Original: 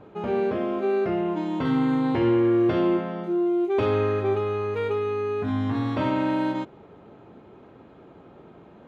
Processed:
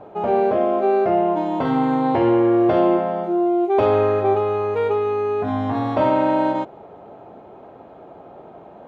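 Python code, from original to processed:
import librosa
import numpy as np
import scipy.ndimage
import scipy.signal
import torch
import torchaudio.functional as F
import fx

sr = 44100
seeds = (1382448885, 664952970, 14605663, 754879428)

y = fx.peak_eq(x, sr, hz=700.0, db=14.5, octaves=1.1)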